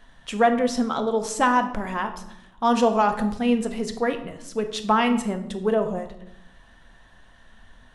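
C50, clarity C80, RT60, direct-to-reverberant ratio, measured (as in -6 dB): 11.0 dB, 13.5 dB, 0.85 s, 7.0 dB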